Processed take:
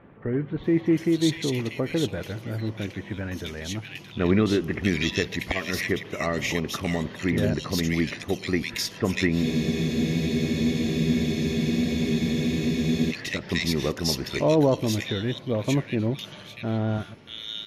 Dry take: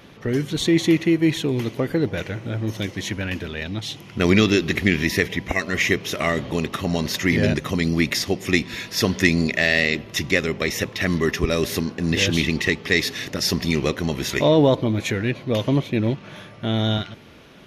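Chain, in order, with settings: bands offset in time lows, highs 0.64 s, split 2000 Hz; spectral freeze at 9.46, 3.64 s; gain -4 dB

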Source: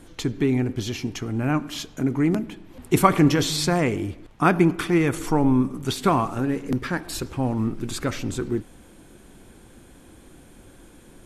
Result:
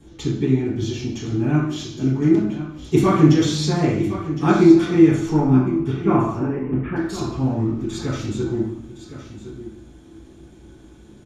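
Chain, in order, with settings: 5.39–6.96 steep low-pass 2700 Hz 48 dB/oct; echo 1.062 s -12.5 dB; reverb RT60 0.60 s, pre-delay 3 ms, DRR -11 dB; gain -13 dB

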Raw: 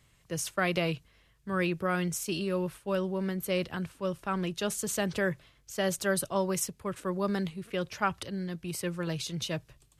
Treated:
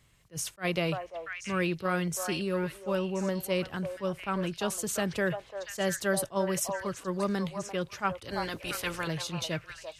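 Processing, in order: 8.28–9.06 spectral limiter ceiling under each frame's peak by 22 dB; delay with a stepping band-pass 0.343 s, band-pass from 770 Hz, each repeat 1.4 oct, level -3 dB; attack slew limiter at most 380 dB/s

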